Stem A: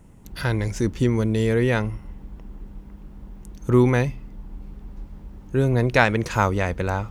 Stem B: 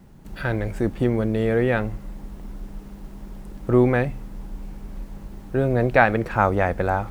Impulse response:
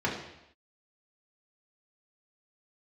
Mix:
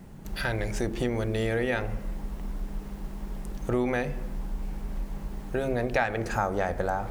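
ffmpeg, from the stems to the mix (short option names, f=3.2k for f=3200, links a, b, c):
-filter_complex "[0:a]highpass=f=95:p=1,volume=-4dB[a];[1:a]volume=-1,volume=1.5dB,asplit=2[b][c];[c]volume=-24dB[d];[2:a]atrim=start_sample=2205[e];[d][e]afir=irnorm=-1:irlink=0[f];[a][b][f]amix=inputs=3:normalize=0,acompressor=threshold=-26dB:ratio=2.5"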